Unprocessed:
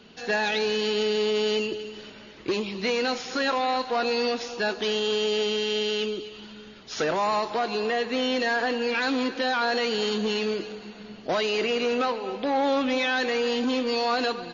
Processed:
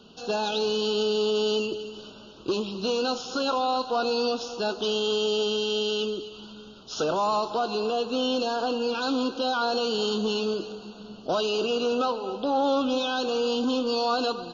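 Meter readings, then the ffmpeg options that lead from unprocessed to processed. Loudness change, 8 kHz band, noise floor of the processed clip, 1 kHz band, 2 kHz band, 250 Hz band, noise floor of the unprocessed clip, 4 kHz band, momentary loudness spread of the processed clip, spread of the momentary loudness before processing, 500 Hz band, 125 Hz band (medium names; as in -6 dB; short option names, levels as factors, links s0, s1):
-0.5 dB, no reading, -46 dBFS, 0.0 dB, -8.0 dB, 0.0 dB, -46 dBFS, 0.0 dB, 11 LU, 11 LU, 0.0 dB, 0.0 dB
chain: -af "asuperstop=centerf=2000:order=8:qfactor=1.6"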